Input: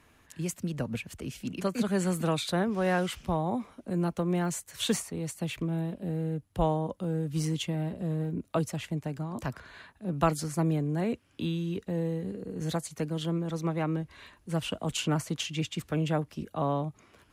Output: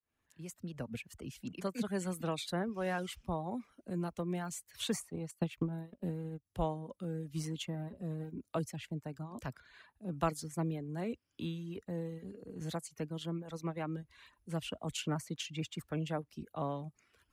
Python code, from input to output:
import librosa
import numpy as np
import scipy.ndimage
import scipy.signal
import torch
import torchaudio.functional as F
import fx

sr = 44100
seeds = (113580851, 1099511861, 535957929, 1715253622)

y = fx.fade_in_head(x, sr, length_s=0.92)
y = fx.dereverb_blind(y, sr, rt60_s=0.8)
y = fx.transient(y, sr, attack_db=8, sustain_db=-11, at=(5.12, 6.44), fade=0.02)
y = y * librosa.db_to_amplitude(-7.0)